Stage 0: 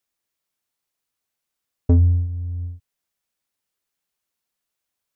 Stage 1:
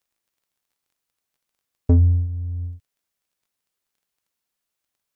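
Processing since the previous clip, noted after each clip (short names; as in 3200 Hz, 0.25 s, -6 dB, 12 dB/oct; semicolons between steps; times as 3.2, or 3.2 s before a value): crackle 16/s -56 dBFS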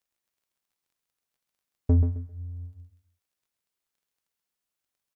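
feedback echo 0.132 s, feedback 22%, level -7 dB; gain -5.5 dB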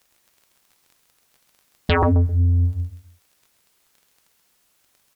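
sine folder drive 18 dB, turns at -13.5 dBFS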